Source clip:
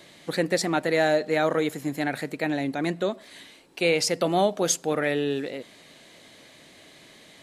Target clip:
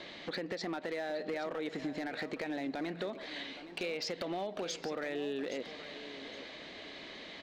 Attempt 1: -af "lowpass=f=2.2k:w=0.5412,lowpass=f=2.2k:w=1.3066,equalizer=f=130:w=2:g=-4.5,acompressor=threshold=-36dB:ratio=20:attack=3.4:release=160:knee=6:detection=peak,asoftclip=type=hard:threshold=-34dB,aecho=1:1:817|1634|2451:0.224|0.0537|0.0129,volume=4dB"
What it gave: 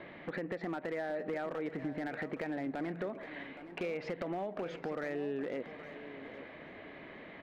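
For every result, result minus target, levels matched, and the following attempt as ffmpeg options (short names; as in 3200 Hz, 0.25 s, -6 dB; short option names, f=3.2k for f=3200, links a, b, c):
4000 Hz band -12.5 dB; 125 Hz band +4.5 dB
-af "lowpass=f=4.7k:w=0.5412,lowpass=f=4.7k:w=1.3066,equalizer=f=130:w=2:g=-4.5,acompressor=threshold=-36dB:ratio=20:attack=3.4:release=160:knee=6:detection=peak,asoftclip=type=hard:threshold=-34dB,aecho=1:1:817|1634|2451:0.224|0.0537|0.0129,volume=4dB"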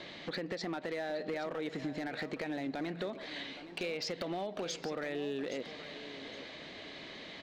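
125 Hz band +3.5 dB
-af "lowpass=f=4.7k:w=0.5412,lowpass=f=4.7k:w=1.3066,equalizer=f=130:w=2:g=-11.5,acompressor=threshold=-36dB:ratio=20:attack=3.4:release=160:knee=6:detection=peak,asoftclip=type=hard:threshold=-34dB,aecho=1:1:817|1634|2451:0.224|0.0537|0.0129,volume=4dB"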